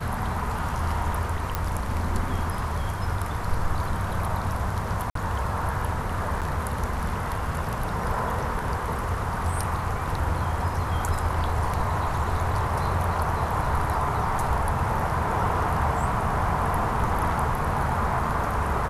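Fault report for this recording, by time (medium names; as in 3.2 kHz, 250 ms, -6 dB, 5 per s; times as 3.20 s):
1.55 s: pop -11 dBFS
5.10–5.15 s: dropout 53 ms
6.41–6.42 s: dropout 7.5 ms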